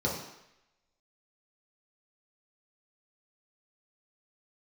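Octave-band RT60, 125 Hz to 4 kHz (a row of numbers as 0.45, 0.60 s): 0.70, 0.70, 0.80, 0.85, 0.95, 0.90 s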